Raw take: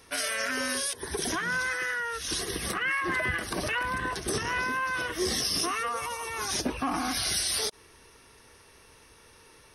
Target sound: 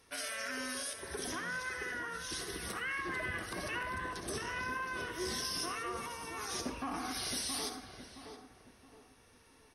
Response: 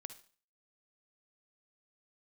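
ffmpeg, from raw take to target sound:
-filter_complex "[0:a]asplit=2[a][b];[b]adelay=670,lowpass=f=1.1k:p=1,volume=-5dB,asplit=2[c][d];[d]adelay=670,lowpass=f=1.1k:p=1,volume=0.4,asplit=2[e][f];[f]adelay=670,lowpass=f=1.1k:p=1,volume=0.4,asplit=2[g][h];[h]adelay=670,lowpass=f=1.1k:p=1,volume=0.4,asplit=2[i][j];[j]adelay=670,lowpass=f=1.1k:p=1,volume=0.4[k];[a][c][e][g][i][k]amix=inputs=6:normalize=0[l];[1:a]atrim=start_sample=2205,asetrate=38808,aresample=44100[m];[l][m]afir=irnorm=-1:irlink=0,volume=-5dB"

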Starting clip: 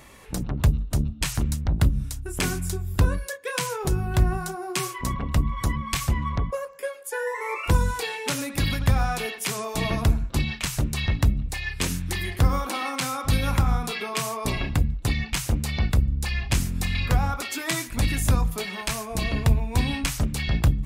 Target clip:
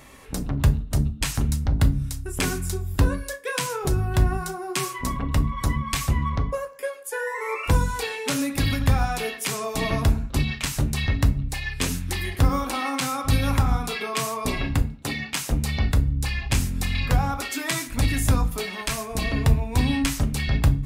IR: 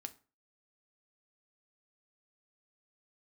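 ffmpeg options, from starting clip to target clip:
-filter_complex "[0:a]asettb=1/sr,asplit=3[a][b][c];[a]atrim=end=14.824[d];[b]atrim=start=14.82:end=15.51,asetpts=PTS-STARTPTS,afade=t=in:d=0.004:c=qsin,afade=t=out:st=0.686:d=0.004:c=qsin,highpass=200[e];[c]atrim=start=15.506[f];[d][e]acrossfade=d=0.004:c1=hsin:c2=qsin[g];[g][f]acrossfade=d=0.004:c1=qsin:c2=hsin[h];[1:a]atrim=start_sample=2205[i];[h][i]afir=irnorm=-1:irlink=0,volume=5dB"

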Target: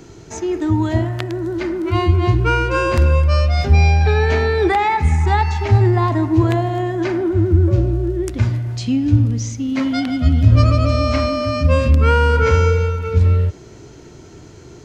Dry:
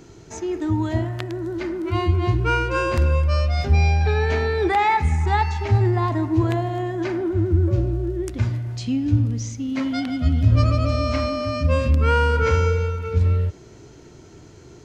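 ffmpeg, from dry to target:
-filter_complex "[0:a]acrossover=split=490[a][b];[b]acompressor=threshold=-20dB:ratio=6[c];[a][c]amix=inputs=2:normalize=0,volume=5dB"

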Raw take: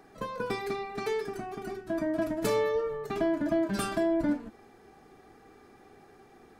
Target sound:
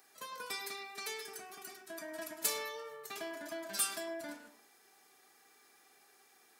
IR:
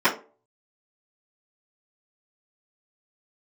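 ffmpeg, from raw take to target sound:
-filter_complex "[0:a]aderivative,asplit=2[a][b];[1:a]atrim=start_sample=2205,adelay=99[c];[b][c]afir=irnorm=-1:irlink=0,volume=-27dB[d];[a][d]amix=inputs=2:normalize=0,volume=6.5dB"

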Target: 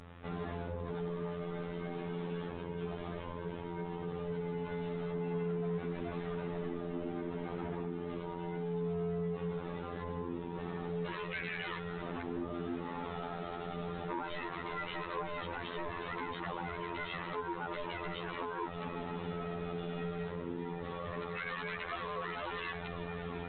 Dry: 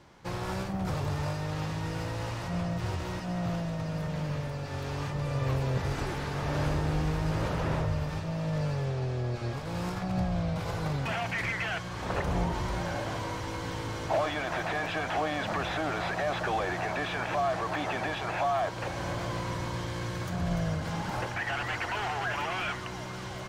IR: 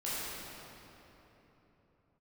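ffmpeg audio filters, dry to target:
-af "acompressor=threshold=-33dB:ratio=6,aeval=exprs='val(0)*sin(2*PI*300*n/s)':c=same,aeval=exprs='val(0)+0.002*(sin(2*PI*50*n/s)+sin(2*PI*2*50*n/s)/2+sin(2*PI*3*50*n/s)/3+sin(2*PI*4*50*n/s)/4+sin(2*PI*5*50*n/s)/5)':c=same,afftfilt=real='hypot(re,im)*cos(PI*b)':imag='0':win_size=2048:overlap=0.75,aresample=8000,asoftclip=type=tanh:threshold=-36dB,aresample=44100,volume=8dB" -ar 24000 -c:a libmp3lame -b:a 40k

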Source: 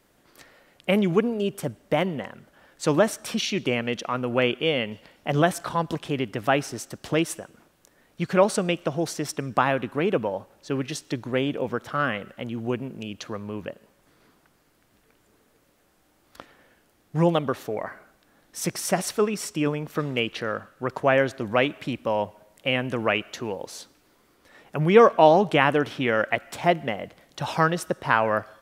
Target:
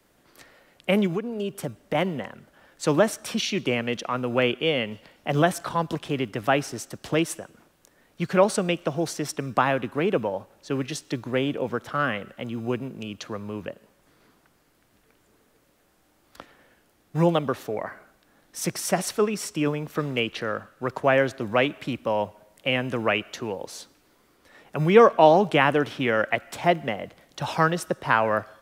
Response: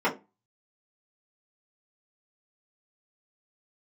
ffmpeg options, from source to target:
-filter_complex "[0:a]acrossover=split=110|540|1900[a][b][c][d];[a]acrusher=samples=35:mix=1:aa=0.000001[e];[e][b][c][d]amix=inputs=4:normalize=0,asettb=1/sr,asplit=3[f][g][h];[f]atrim=end=1.064[i];[g]atrim=start=1.06:end=1.95,asetpts=PTS-STARTPTS,afade=t=in:d=0.004:c=qsin,afade=t=out:st=0.886:d=0.004:c=qsin,acompressor=threshold=-25dB:ratio=6[j];[h]atrim=start=1.946[k];[i][j]acrossfade=d=0.004:c1=hsin:c2=qsin[l];[l][k]acrossfade=d=0.004:c1=qsin:c2=hsin"

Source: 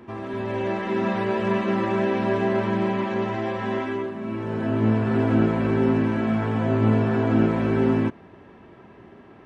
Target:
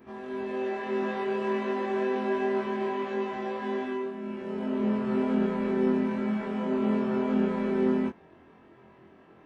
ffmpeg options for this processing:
-af "afftfilt=real='re':imag='-im':win_size=2048:overlap=0.75,lowshelf=f=140:g=-6,volume=-2dB"

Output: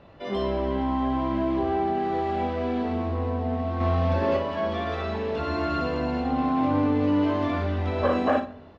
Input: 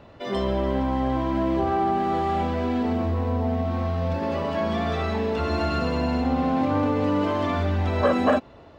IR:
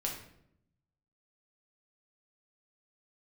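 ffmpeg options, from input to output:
-filter_complex "[0:a]asplit=2[a][b];[1:a]atrim=start_sample=2205[c];[b][c]afir=irnorm=-1:irlink=0,volume=-9.5dB[d];[a][d]amix=inputs=2:normalize=0,asettb=1/sr,asplit=3[e][f][g];[e]atrim=end=3.804[h];[f]atrim=start=3.8:end=4.37,asetpts=PTS-STARTPTS,afade=t=in:d=0.004:c=qsin,afade=t=out:st=0.566:d=0.004:c=qsin,acontrast=38[i];[g]atrim=start=4.366[j];[h][i]acrossfade=d=0.004:c1=hsin:c2=qsin[k];[k][j]acrossfade=d=0.004:c1=qsin:c2=hsin,lowpass=5k,aecho=1:1:20|58:0.473|0.376,volume=-6dB"

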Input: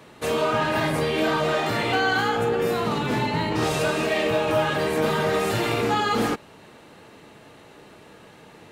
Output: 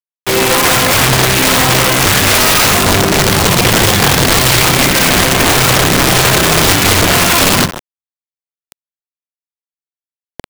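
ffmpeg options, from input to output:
-filter_complex "[0:a]asubboost=boost=11.5:cutoff=190,highpass=100,aemphasis=mode=production:type=75kf,asetrate=36603,aresample=44100,asplit=2[a][b];[b]adynamicsmooth=sensitivity=6.5:basefreq=580,volume=-0.5dB[c];[a][c]amix=inputs=2:normalize=0,aresample=11025,aresample=44100,asplit=2[d][e];[e]aecho=0:1:154|308|462:0.112|0.0426|0.0162[f];[d][f]amix=inputs=2:normalize=0,acrusher=bits=3:mix=0:aa=0.000001,acrossover=split=470[g][h];[g]acompressor=threshold=-14dB:ratio=5[i];[i][h]amix=inputs=2:normalize=0,aeval=exprs='(mod(3.35*val(0)+1,2)-1)/3.35':c=same,volume=6.5dB"

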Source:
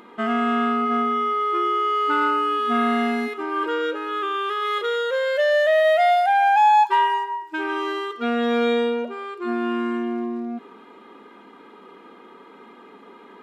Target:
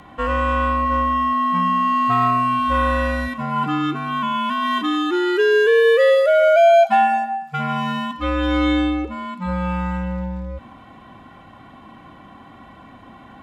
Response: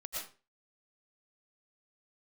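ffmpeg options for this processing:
-af "afreqshift=-170,lowshelf=f=65:g=-9,volume=3.5dB"

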